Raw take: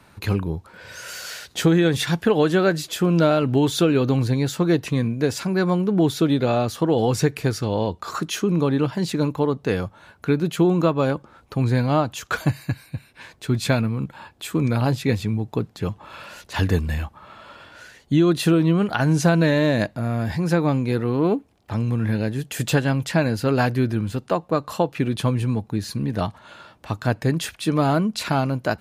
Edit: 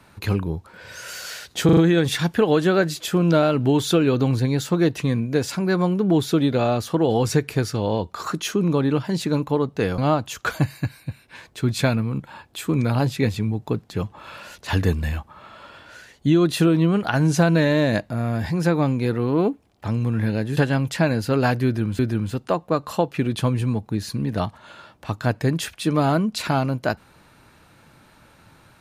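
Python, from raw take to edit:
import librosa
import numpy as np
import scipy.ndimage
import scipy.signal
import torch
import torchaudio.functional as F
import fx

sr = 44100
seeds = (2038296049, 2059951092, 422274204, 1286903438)

y = fx.edit(x, sr, fx.stutter(start_s=1.65, slice_s=0.04, count=4),
    fx.cut(start_s=9.86, length_s=1.98),
    fx.cut(start_s=22.43, length_s=0.29),
    fx.repeat(start_s=23.8, length_s=0.34, count=2), tone=tone)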